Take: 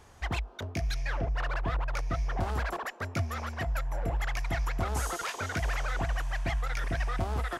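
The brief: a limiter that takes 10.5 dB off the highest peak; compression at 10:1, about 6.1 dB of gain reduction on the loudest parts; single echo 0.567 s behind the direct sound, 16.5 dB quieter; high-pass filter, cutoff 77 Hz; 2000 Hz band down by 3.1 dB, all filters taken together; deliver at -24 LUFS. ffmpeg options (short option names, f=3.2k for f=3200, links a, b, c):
-af "highpass=77,equalizer=f=2k:t=o:g=-4,acompressor=threshold=-34dB:ratio=10,alimiter=level_in=11.5dB:limit=-24dB:level=0:latency=1,volume=-11.5dB,aecho=1:1:567:0.15,volume=20.5dB"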